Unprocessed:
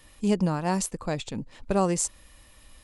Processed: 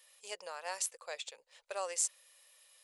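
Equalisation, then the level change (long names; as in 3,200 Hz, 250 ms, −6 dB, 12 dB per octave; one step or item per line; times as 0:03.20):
elliptic high-pass filter 510 Hz, stop band 50 dB
dynamic equaliser 1,900 Hz, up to +4 dB, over −44 dBFS, Q 0.91
parametric band 900 Hz −11 dB 2.5 octaves
−3.0 dB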